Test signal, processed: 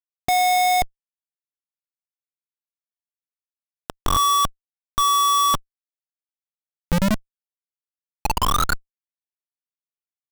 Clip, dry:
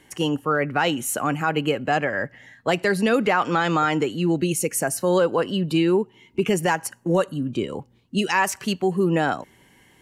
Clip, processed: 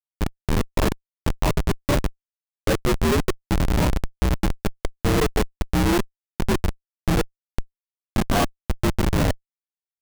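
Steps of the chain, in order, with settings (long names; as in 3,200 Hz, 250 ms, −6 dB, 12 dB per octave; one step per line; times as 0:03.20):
partials spread apart or drawn together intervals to 78%
high-frequency loss of the air 350 metres
auto-filter low-pass saw down 0.28 Hz 280–3,900 Hz
notch filter 3,300 Hz, Q 10
comparator with hysteresis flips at −16.5 dBFS
level +5 dB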